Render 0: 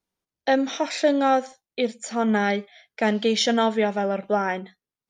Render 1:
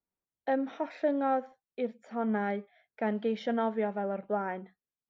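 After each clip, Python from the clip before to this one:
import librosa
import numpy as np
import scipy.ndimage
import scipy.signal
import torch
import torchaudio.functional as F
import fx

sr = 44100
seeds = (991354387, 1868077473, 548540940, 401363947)

y = scipy.signal.sosfilt(scipy.signal.butter(2, 1600.0, 'lowpass', fs=sr, output='sos'), x)
y = F.gain(torch.from_numpy(y), -8.5).numpy()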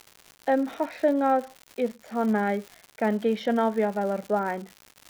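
y = fx.dmg_crackle(x, sr, seeds[0], per_s=190.0, level_db=-40.0)
y = F.gain(torch.from_numpy(y), 6.0).numpy()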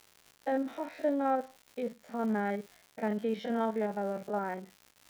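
y = fx.spec_steps(x, sr, hold_ms=50)
y = F.gain(torch.from_numpy(y), -6.5).numpy()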